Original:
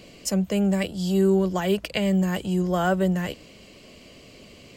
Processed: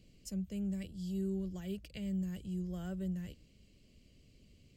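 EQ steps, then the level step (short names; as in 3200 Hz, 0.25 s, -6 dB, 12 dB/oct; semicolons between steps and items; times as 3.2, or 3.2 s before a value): passive tone stack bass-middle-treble 10-0-1; +1.5 dB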